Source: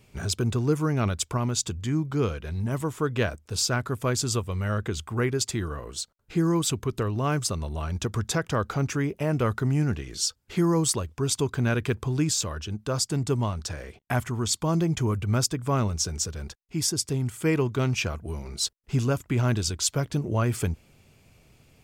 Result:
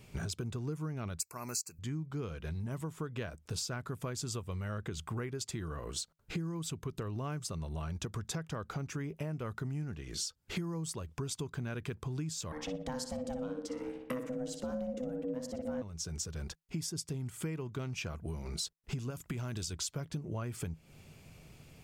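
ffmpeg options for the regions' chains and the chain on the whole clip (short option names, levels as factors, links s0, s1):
-filter_complex "[0:a]asettb=1/sr,asplit=3[s0][s1][s2];[s0]atrim=end=1.204[s3];[s1]atrim=start=1.2:end=1.79,asetpts=PTS-STARTPTS,afade=t=in:d=0.004:c=qsin,afade=t=out:st=0.586:d=0.004:c=qsin,asuperstop=centerf=3300:order=20:qfactor=2.5,aemphasis=mode=production:type=riaa[s4];[s2]atrim=start=1.786[s5];[s3][s4]acrossfade=d=0.004:c1=hsin:c2=qsin[s6];[s6][s5]acrossfade=d=0.004:c1=qsin:c2=hsin,asettb=1/sr,asplit=3[s7][s8][s9];[s7]atrim=end=12.524[s10];[s8]atrim=start=12.52:end=15.82,asetpts=PTS-STARTPTS,afade=t=in:d=0.004:c=qsin,afade=t=out:st=3.296:d=0.004:c=qsin,asubboost=boost=7.5:cutoff=180,asplit=2[s11][s12];[s12]adelay=60,lowpass=f=4000:p=1,volume=0.531,asplit=2[s13][s14];[s14]adelay=60,lowpass=f=4000:p=1,volume=0.45,asplit=2[s15][s16];[s16]adelay=60,lowpass=f=4000:p=1,volume=0.45,asplit=2[s17][s18];[s18]adelay=60,lowpass=f=4000:p=1,volume=0.45,asplit=2[s19][s20];[s20]adelay=60,lowpass=f=4000:p=1,volume=0.45[s21];[s11][s13][s15][s17][s19][s21]amix=inputs=6:normalize=0,atrim=end_sample=145530,aeval=exprs='val(0)*sin(2*PI*380*n/s)':c=same[s22];[s9]atrim=start=15.816[s23];[s10][s22]acrossfade=d=0.004:c1=hsin:c2=qsin[s24];[s24][s23]acrossfade=d=0.004:c1=qsin:c2=hsin,asettb=1/sr,asplit=3[s25][s26][s27];[s25]atrim=end=19.104[s28];[s26]atrim=start=19.1:end=19.73,asetpts=PTS-STARTPTS,afade=t=in:d=0.004:c=qsin,afade=t=out:st=0.626:d=0.004:c=qsin,highshelf=f=3400:g=7,acompressor=threshold=0.0562:ratio=6:attack=3.2:release=140:knee=1:detection=peak[s29];[s27]atrim=start=19.726[s30];[s28][s29]acrossfade=d=0.004:c1=hsin:c2=qsin[s31];[s31][s30]acrossfade=d=0.004:c1=qsin:c2=hsin,equalizer=f=160:w=7.6:g=8,acompressor=threshold=0.0158:ratio=12,volume=1.12"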